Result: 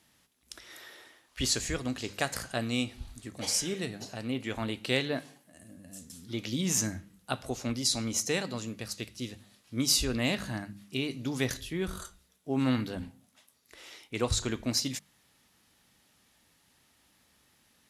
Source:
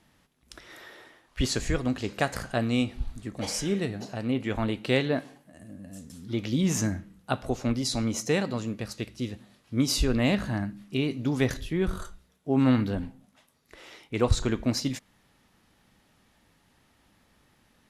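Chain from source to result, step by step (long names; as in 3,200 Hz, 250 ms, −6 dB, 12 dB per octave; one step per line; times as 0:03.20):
high-pass filter 43 Hz
high-shelf EQ 2,800 Hz +11.5 dB
mains-hum notches 50/100/150/200 Hz
level −6 dB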